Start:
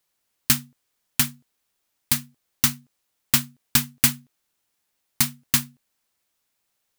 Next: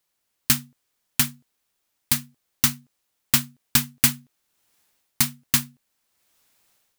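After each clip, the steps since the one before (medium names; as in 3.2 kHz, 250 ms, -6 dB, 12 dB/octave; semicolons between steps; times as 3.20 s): level rider gain up to 12 dB; trim -1 dB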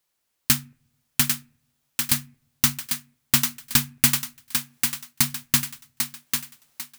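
thinning echo 796 ms, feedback 35%, high-pass 300 Hz, level -5 dB; on a send at -23 dB: reverberation RT60 0.55 s, pre-delay 4 ms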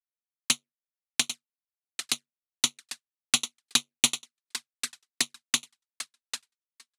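power-law waveshaper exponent 2; touch-sensitive flanger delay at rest 5.2 ms, full sweep at -29.5 dBFS; cabinet simulation 390–9800 Hz, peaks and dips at 540 Hz -8 dB, 880 Hz -4 dB, 3.9 kHz +5 dB; trim +8 dB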